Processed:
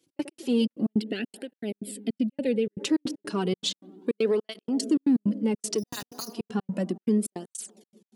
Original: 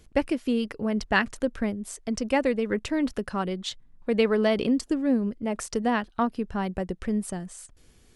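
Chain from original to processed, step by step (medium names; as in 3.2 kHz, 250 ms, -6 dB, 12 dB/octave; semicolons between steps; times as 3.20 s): gate -53 dBFS, range -16 dB; on a send: feedback echo behind a low-pass 88 ms, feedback 78%, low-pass 670 Hz, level -20.5 dB; 5.78–6.33 s: on the sum: careless resampling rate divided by 8×, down none, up hold; high-pass 210 Hz 24 dB/octave; trance gate "x.x.xxx.x.xxx.x" 157 bpm -60 dB; high-order bell 1.1 kHz -8 dB 2.3 oct; in parallel at -6.5 dB: saturation -24 dBFS, distortion -12 dB; on the sum: peak limiter -21 dBFS, peak gain reduction 11 dB; 1.00–2.80 s: static phaser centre 2.7 kHz, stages 4; cancelling through-zero flanger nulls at 0.33 Hz, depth 4.8 ms; trim +6.5 dB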